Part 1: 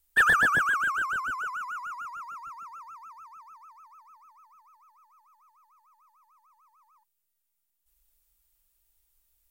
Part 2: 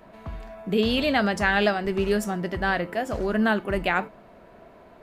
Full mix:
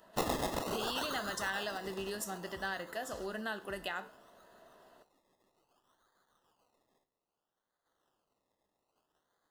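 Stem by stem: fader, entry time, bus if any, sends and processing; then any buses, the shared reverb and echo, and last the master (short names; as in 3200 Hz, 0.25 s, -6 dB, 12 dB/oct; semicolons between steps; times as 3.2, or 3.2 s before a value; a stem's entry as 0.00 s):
-4.5 dB, 0.00 s, no send, spectral limiter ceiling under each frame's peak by 24 dB; decimation with a swept rate 23×, swing 60% 0.61 Hz
-5.5 dB, 0.00 s, no send, high shelf 3400 Hz +11.5 dB; compressor, threshold -23 dBFS, peak gain reduction 8 dB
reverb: off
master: Butterworth band-stop 2300 Hz, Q 4.2; low shelf 250 Hz -11.5 dB; resonator 64 Hz, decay 0.47 s, harmonics all, mix 50%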